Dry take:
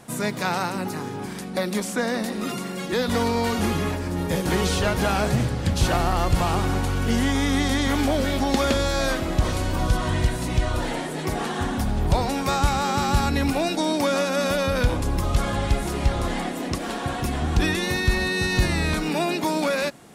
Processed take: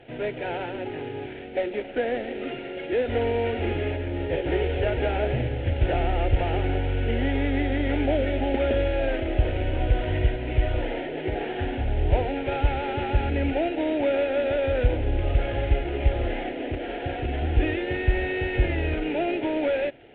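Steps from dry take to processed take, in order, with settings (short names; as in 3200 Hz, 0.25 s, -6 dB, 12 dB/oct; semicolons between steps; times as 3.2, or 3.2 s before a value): CVSD 16 kbps; added harmonics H 2 -26 dB, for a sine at -9 dBFS; fixed phaser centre 460 Hz, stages 4; gain +2.5 dB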